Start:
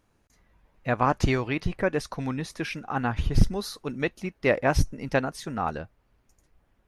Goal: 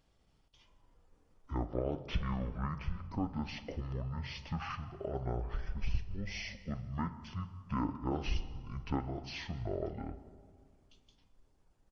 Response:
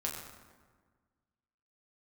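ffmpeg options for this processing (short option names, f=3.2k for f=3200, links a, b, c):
-filter_complex "[0:a]bass=f=250:g=2,treble=f=4k:g=5,acompressor=threshold=-34dB:ratio=2,asetrate=38170,aresample=44100,atempo=1.15535,asplit=2[a][b];[1:a]atrim=start_sample=2205,asetrate=57330,aresample=44100[c];[b][c]afir=irnorm=-1:irlink=0,volume=-5.5dB[d];[a][d]amix=inputs=2:normalize=0,asetrate=25442,aresample=44100,volume=-7dB"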